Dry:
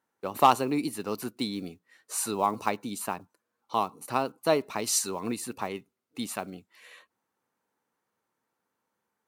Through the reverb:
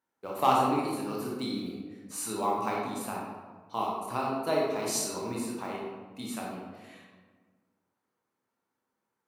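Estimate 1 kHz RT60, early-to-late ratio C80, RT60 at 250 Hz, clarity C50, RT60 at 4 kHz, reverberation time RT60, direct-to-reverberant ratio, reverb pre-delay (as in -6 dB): 1.3 s, 2.5 dB, 1.9 s, 0.0 dB, 0.75 s, 1.4 s, -4.0 dB, 20 ms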